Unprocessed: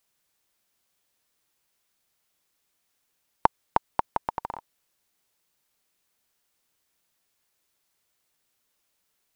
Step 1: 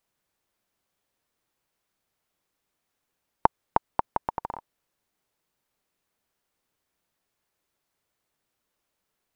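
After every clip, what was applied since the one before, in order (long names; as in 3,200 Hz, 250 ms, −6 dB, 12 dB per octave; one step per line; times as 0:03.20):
high-shelf EQ 2,100 Hz −9.5 dB
level +1.5 dB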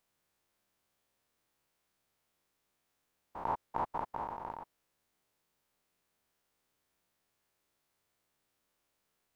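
spectrum averaged block by block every 100 ms
level +1 dB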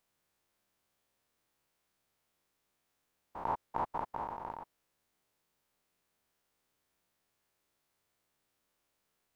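no processing that can be heard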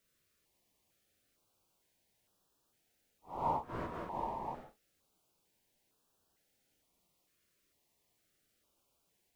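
random phases in long frames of 200 ms
notch on a step sequencer 2.2 Hz 850–2,100 Hz
level +4 dB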